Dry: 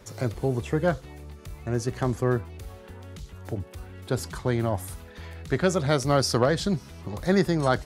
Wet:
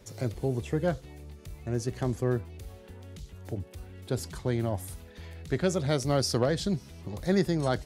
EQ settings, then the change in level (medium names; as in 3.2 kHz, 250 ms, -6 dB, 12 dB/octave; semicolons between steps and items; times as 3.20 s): peaking EQ 1.2 kHz -6.5 dB 1.2 oct; -3.0 dB